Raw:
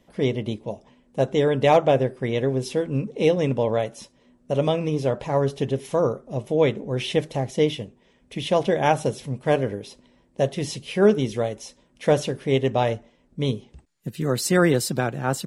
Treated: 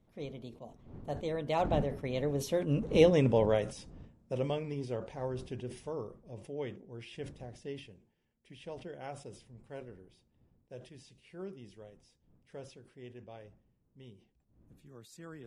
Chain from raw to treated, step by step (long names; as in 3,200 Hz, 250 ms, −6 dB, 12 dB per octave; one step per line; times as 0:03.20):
wind on the microphone 190 Hz −37 dBFS
source passing by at 0:03.12, 30 m/s, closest 15 metres
level that may fall only so fast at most 120 dB per second
level −3.5 dB